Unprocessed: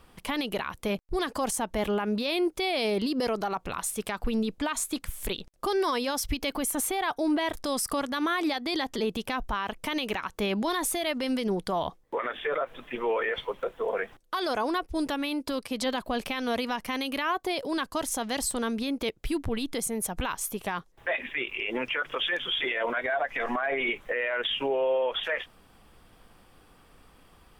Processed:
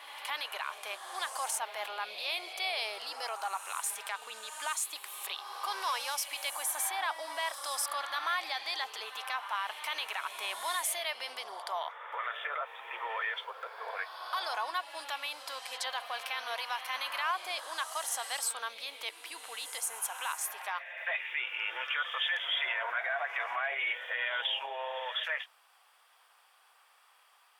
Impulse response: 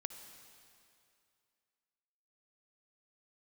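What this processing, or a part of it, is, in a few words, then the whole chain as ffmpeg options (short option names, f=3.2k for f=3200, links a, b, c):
ghost voice: -filter_complex "[0:a]areverse[a];[1:a]atrim=start_sample=2205[b];[a][b]afir=irnorm=-1:irlink=0,areverse,highpass=f=780:w=0.5412,highpass=f=780:w=1.3066"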